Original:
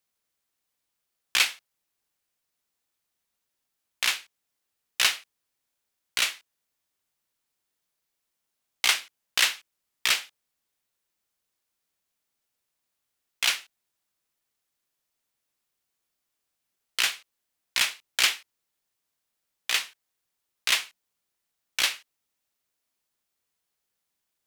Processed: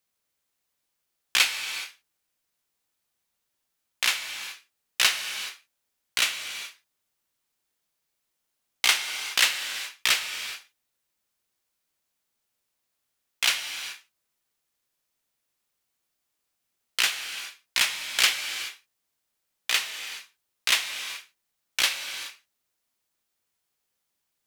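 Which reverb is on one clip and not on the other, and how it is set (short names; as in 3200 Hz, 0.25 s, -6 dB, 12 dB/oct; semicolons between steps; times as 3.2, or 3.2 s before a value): non-linear reverb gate 0.45 s flat, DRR 7 dB; gain +1 dB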